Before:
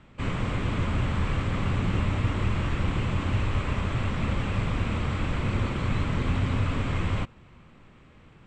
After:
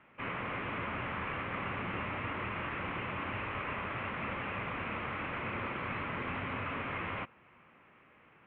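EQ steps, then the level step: HPF 840 Hz 6 dB/oct; steep low-pass 2700 Hz 36 dB/oct; 0.0 dB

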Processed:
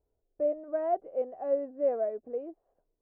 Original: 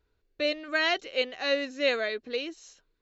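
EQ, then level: ladder low-pass 780 Hz, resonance 60%; air absorption 160 m; +4.5 dB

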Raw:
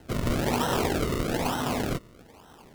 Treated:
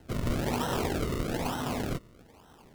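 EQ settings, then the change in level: low shelf 200 Hz +3.5 dB; -5.0 dB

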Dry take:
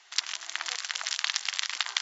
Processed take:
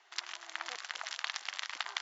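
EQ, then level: tilt -4 dB/oct; low shelf 230 Hz -5.5 dB; -2.5 dB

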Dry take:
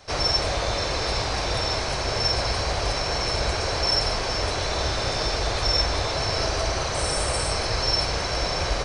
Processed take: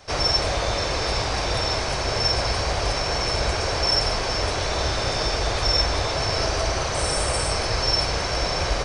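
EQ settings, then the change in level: notch 4100 Hz, Q 18; +1.5 dB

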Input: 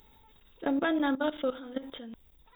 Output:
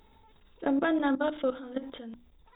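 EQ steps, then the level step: LPF 2200 Hz 6 dB/oct; notches 60/120/180/240/300 Hz; +2.0 dB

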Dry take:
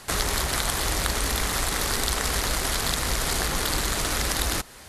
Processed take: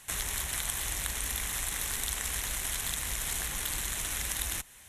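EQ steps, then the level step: passive tone stack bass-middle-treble 5-5-5; bell 1300 Hz -5.5 dB 0.37 oct; bell 4700 Hz -15 dB 0.39 oct; +3.0 dB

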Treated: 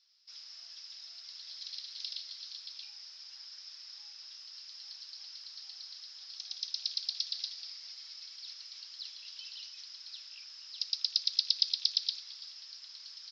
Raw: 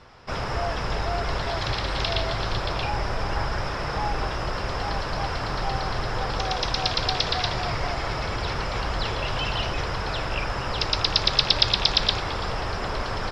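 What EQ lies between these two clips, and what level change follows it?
Butterworth band-pass 5200 Hz, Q 2.5; air absorption 130 m; 0.0 dB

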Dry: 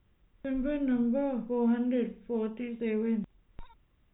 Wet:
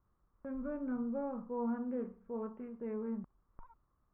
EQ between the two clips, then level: ladder low-pass 1300 Hz, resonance 65%; +1.5 dB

